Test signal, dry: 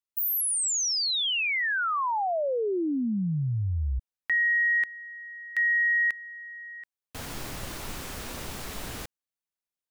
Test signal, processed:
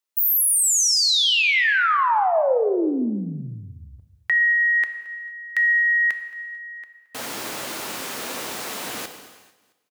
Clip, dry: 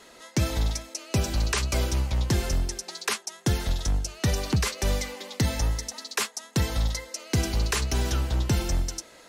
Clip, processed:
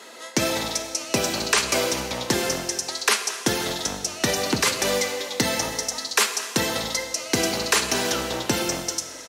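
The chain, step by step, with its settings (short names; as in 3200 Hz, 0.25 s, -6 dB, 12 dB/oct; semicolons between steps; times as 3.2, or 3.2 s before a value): HPF 290 Hz 12 dB/oct; on a send: feedback echo 0.222 s, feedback 46%, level -21.5 dB; on the sum: non-linear reverb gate 0.5 s falling, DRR 7 dB; gain +7.5 dB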